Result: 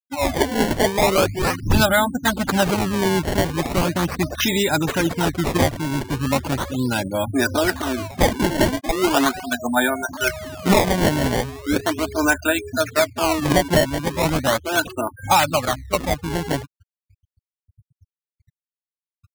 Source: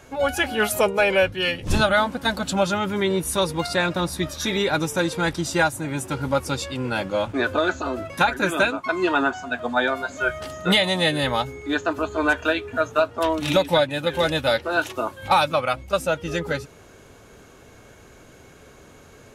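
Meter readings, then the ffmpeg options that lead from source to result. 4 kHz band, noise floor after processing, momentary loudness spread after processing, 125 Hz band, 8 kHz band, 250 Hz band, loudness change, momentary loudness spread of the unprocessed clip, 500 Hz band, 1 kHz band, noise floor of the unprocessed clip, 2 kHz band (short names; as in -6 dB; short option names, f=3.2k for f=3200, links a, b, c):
0.0 dB, under -85 dBFS, 7 LU, +6.0 dB, +6.0 dB, +5.0 dB, +2.0 dB, 7 LU, +1.0 dB, +2.0 dB, -49 dBFS, 0.0 dB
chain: -af "equalizer=f=100:t=o:w=0.33:g=5,equalizer=f=250:t=o:w=0.33:g=4,equalizer=f=500:t=o:w=0.33:g=-8,equalizer=f=1.25k:t=o:w=0.33:g=-5,equalizer=f=6.3k:t=o:w=0.33:g=11,afftfilt=real='re*gte(hypot(re,im),0.0447)':imag='im*gte(hypot(re,im),0.0447)':win_size=1024:overlap=0.75,acrusher=samples=20:mix=1:aa=0.000001:lfo=1:lforange=32:lforate=0.38,volume=3.5dB"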